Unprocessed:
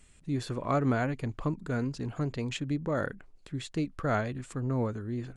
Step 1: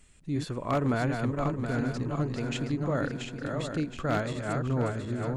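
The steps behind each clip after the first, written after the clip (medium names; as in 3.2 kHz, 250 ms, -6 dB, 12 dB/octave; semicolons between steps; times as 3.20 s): backward echo that repeats 361 ms, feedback 67%, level -4.5 dB; wavefolder -19 dBFS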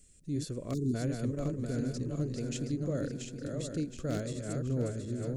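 spectral selection erased 0.74–0.95 s, 450–3500 Hz; FFT filter 550 Hz 0 dB, 880 Hz -19 dB, 1.5 kHz -10 dB, 2.3 kHz -8 dB, 3.3 kHz -5 dB, 5.8 kHz +6 dB; trim -3.5 dB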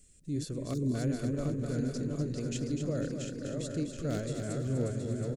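feedback delay 248 ms, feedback 43%, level -7.5 dB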